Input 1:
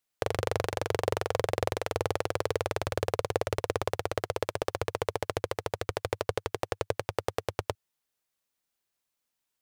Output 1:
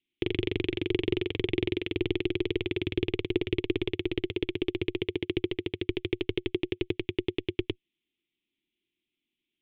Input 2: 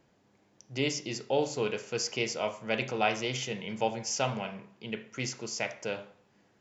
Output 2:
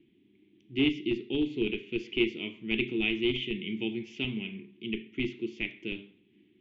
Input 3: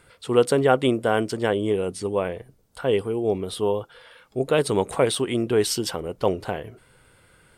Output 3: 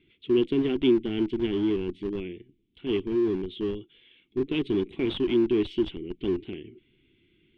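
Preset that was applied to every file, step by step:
EQ curve 130 Hz 0 dB, 250 Hz +10 dB, 360 Hz +15 dB, 540 Hz -21 dB, 1500 Hz -16 dB, 2200 Hz +8 dB, 3400 Hz +13 dB, 4900 Hz -13 dB, 8700 Hz -5 dB; in parallel at -10 dB: Schmitt trigger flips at -16 dBFS; on the sum: air absorption 240 m; normalise peaks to -12 dBFS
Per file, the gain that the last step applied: -0.5, -3.5, -10.5 dB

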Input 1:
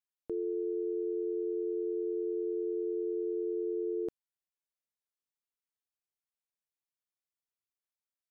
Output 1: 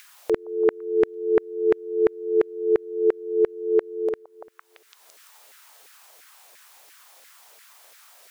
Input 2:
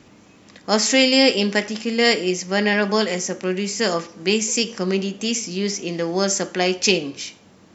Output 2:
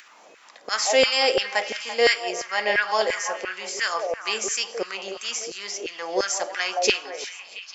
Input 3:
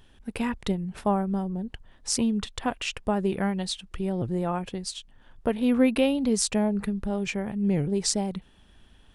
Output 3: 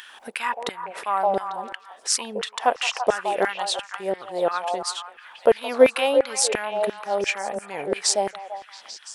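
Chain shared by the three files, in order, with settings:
delay with a stepping band-pass 0.169 s, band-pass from 610 Hz, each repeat 0.7 oct, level -4 dB; LFO high-pass saw down 2.9 Hz 440–1800 Hz; upward compressor, threshold -39 dBFS; match loudness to -24 LUFS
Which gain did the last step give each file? +12.0, -4.5, +5.0 dB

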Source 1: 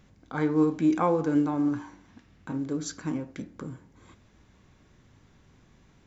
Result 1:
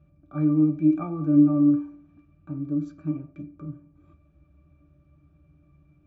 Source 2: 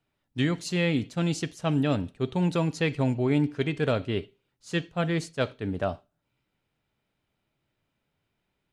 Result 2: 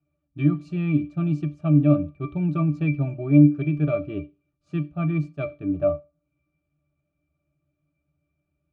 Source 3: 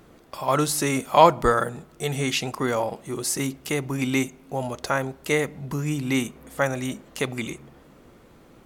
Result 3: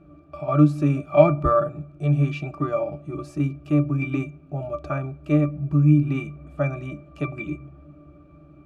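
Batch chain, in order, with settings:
octave resonator D, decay 0.15 s; match loudness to -23 LUFS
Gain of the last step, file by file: +8.5, +11.5, +12.5 dB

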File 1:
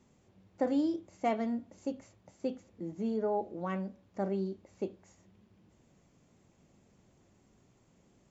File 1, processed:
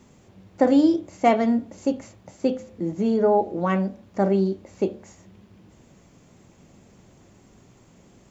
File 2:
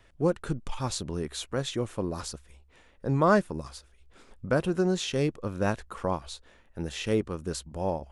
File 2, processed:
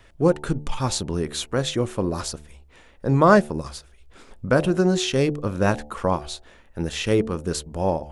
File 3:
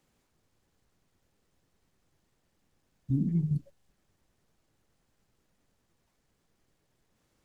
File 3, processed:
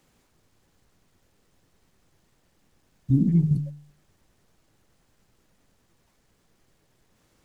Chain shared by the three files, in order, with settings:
de-hum 73.71 Hz, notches 12; match loudness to -23 LUFS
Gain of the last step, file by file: +13.0, +7.0, +8.0 dB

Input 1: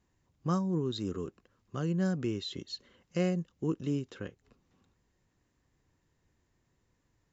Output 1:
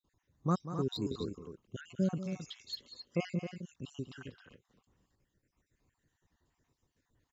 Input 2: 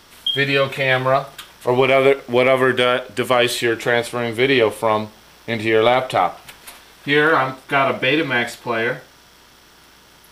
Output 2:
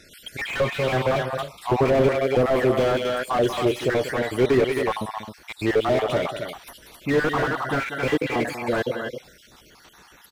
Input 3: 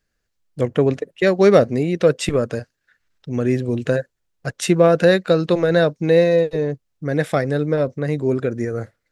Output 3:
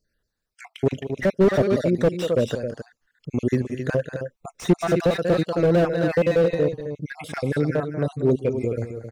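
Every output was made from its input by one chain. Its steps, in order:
random spectral dropouts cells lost 55%; loudspeakers at several distances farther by 65 m -12 dB, 91 m -9 dB; slew limiter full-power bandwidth 87 Hz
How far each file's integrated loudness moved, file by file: -4.0, -5.5, -4.5 LU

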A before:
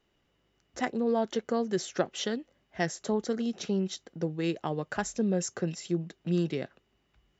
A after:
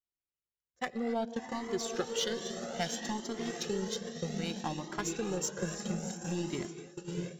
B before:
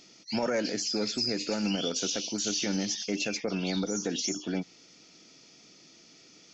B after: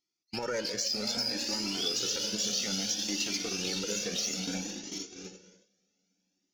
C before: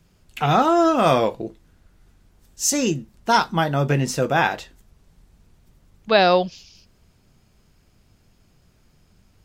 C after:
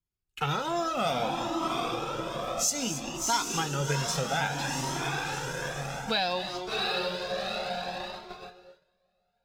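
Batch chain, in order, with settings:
on a send: diffused feedback echo 0.719 s, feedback 47%, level -4.5 dB; on the sum: gate -34 dBFS, range -30 dB; dynamic EQ 3900 Hz, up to +6 dB, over -40 dBFS, Q 0.83; non-linear reverb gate 0.3 s rising, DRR 11.5 dB; in parallel at -5.5 dB: crossover distortion -30 dBFS; on the sum: high shelf 5100 Hz +5.5 dB; notch 640 Hz, Q 12; compressor 3:1, threshold -25 dBFS; cascading flanger rising 0.61 Hz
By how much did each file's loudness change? -4.5, -1.0, -10.5 LU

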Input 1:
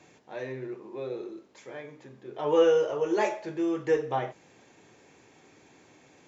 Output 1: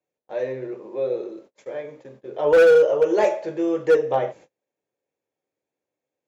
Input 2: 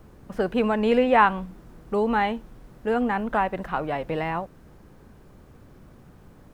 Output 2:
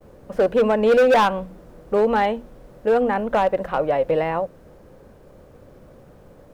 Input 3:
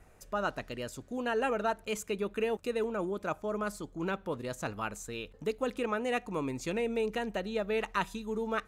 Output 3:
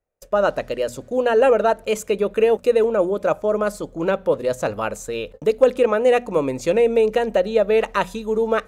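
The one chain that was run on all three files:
notches 60/120/180/240 Hz; gate -51 dBFS, range -35 dB; bell 540 Hz +12.5 dB 0.6 oct; hard clip -12.5 dBFS; match loudness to -20 LUFS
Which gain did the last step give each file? +2.0, +1.0, +8.5 dB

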